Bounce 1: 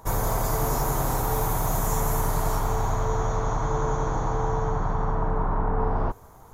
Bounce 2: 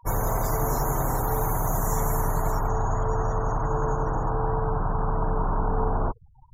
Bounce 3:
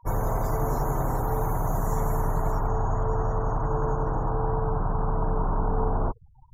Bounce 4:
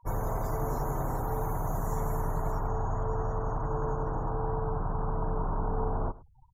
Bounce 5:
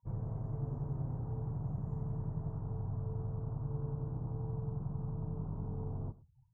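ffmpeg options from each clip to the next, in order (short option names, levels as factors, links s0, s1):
-af "afftfilt=real='re*gte(hypot(re,im),0.0178)':imag='im*gte(hypot(re,im),0.0178)':win_size=1024:overlap=0.75"
-af "highshelf=f=2000:g=-10.5"
-af "aecho=1:1:104:0.1,volume=0.562"
-af "bandpass=f=130:t=q:w=1.5:csg=0,flanger=delay=5.9:depth=1.8:regen=-77:speed=0.42:shape=triangular,volume=1.5"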